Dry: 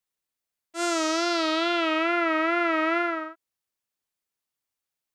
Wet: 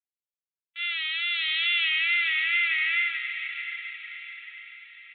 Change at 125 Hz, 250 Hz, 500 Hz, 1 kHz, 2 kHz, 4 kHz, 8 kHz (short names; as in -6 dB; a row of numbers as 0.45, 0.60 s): n/a, under -40 dB, under -40 dB, -17.5 dB, +5.5 dB, +5.5 dB, under -40 dB